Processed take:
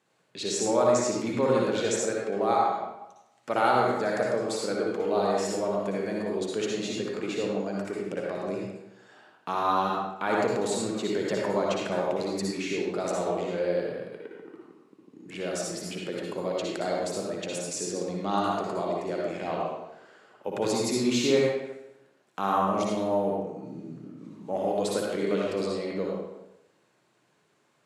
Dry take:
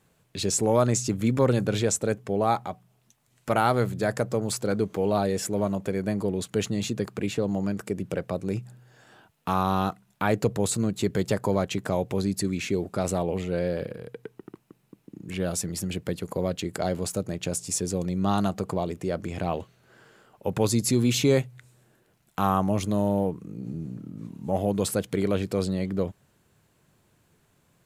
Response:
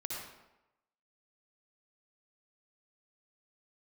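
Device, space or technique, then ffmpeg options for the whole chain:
supermarket ceiling speaker: -filter_complex "[0:a]highpass=280,lowpass=7000[s0];[1:a]atrim=start_sample=2205[s1];[s0][s1]afir=irnorm=-1:irlink=0"

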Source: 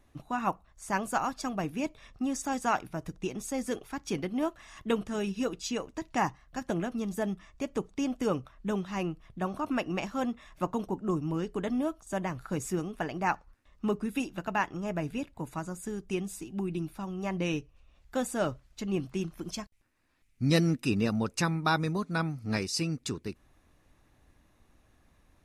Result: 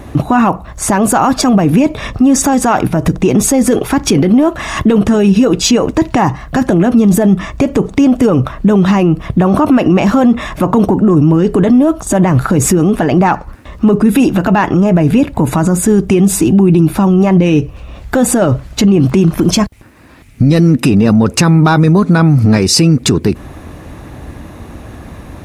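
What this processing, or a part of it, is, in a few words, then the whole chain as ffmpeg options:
mastering chain: -af "highpass=58,equalizer=f=5700:t=o:w=0.77:g=-2,acompressor=threshold=0.0224:ratio=2.5,asoftclip=type=tanh:threshold=0.0668,tiltshelf=f=1100:g=4.5,alimiter=level_in=50.1:limit=0.891:release=50:level=0:latency=1,volume=0.891"

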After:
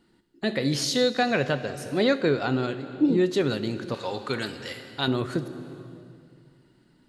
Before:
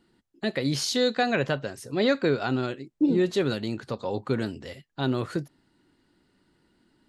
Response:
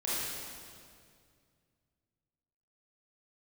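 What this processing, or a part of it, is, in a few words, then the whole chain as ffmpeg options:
compressed reverb return: -filter_complex "[0:a]asplit=2[s0][s1];[1:a]atrim=start_sample=2205[s2];[s1][s2]afir=irnorm=-1:irlink=0,acompressor=threshold=0.0891:ratio=6,volume=0.266[s3];[s0][s3]amix=inputs=2:normalize=0,asettb=1/sr,asplit=3[s4][s5][s6];[s4]atrim=end=3.944[s7];[s5]atrim=start=3.94:end=5.08,asetpts=PTS-STARTPTS,afade=t=in:d=0.004:c=qsin,afade=t=out:st=1.136:d=0.004:c=qsin,tiltshelf=f=840:g=-7.5[s8];[s6]atrim=start=5.076[s9];[s7][s8]acrossfade=d=0.004:c1=hsin:c2=qsin[s10];[s10][s9]acrossfade=d=0.004:c1=qsin:c2=hsin"

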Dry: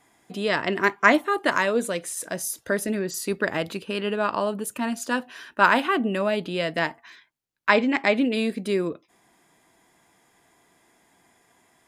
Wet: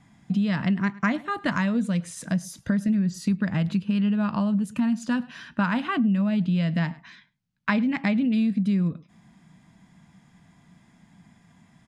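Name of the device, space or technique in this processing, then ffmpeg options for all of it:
jukebox: -filter_complex "[0:a]lowpass=6400,lowshelf=f=270:t=q:w=3:g=12.5,asplit=2[s0][s1];[s1]adelay=105,volume=0.0631,highshelf=f=4000:g=-2.36[s2];[s0][s2]amix=inputs=2:normalize=0,acompressor=threshold=0.0794:ratio=4"

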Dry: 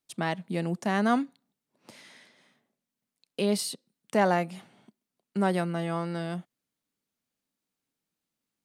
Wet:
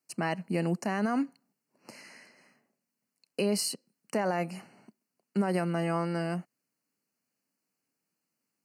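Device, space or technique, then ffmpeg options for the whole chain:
PA system with an anti-feedback notch: -af "highpass=130,asuperstop=centerf=3500:order=20:qfactor=3.3,alimiter=limit=0.0891:level=0:latency=1:release=64,volume=1.26"

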